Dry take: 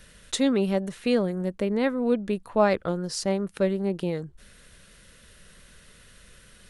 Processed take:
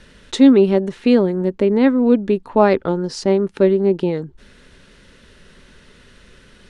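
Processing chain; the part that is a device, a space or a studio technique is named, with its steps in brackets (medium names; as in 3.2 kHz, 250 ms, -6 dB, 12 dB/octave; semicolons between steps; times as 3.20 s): inside a cardboard box (low-pass 5.4 kHz 12 dB/octave; small resonant body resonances 270/380/880 Hz, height 9 dB, ringing for 45 ms); trim +5 dB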